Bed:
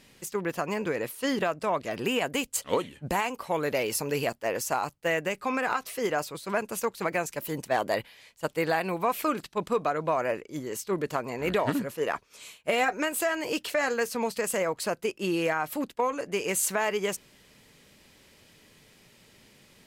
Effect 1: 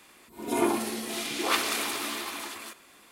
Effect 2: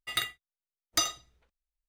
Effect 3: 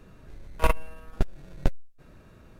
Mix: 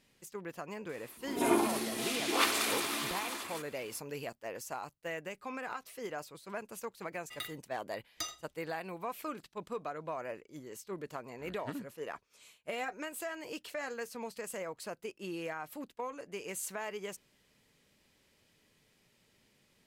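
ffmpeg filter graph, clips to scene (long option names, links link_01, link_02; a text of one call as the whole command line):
ffmpeg -i bed.wav -i cue0.wav -i cue1.wav -filter_complex "[0:a]volume=-12.5dB[link_01];[1:a]atrim=end=3.11,asetpts=PTS-STARTPTS,volume=-2.5dB,afade=type=in:duration=0.004:curve=hsin,afade=type=out:start_time=3.106:duration=0.004:curve=hsin,adelay=890[link_02];[2:a]atrim=end=1.88,asetpts=PTS-STARTPTS,volume=-12dB,afade=type=in:duration=0.004:curve=hsin,afade=type=out:start_time=1.876:duration=0.004:curve=hsin,adelay=7230[link_03];[link_01][link_02][link_03]amix=inputs=3:normalize=0" out.wav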